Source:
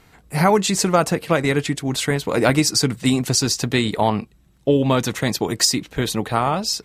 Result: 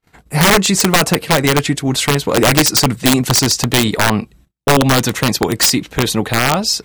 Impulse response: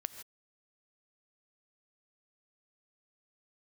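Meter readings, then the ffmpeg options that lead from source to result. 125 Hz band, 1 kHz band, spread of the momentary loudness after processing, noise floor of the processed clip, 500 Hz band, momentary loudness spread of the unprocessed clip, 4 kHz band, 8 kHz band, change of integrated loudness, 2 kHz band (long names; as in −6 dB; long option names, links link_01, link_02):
+5.5 dB, +5.0 dB, 6 LU, −55 dBFS, +3.0 dB, 6 LU, +7.5 dB, +7.0 dB, +6.0 dB, +8.5 dB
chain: -af "agate=range=-37dB:threshold=-50dB:ratio=16:detection=peak,acontrast=77,aeval=exprs='(mod(1.78*val(0)+1,2)-1)/1.78':channel_layout=same"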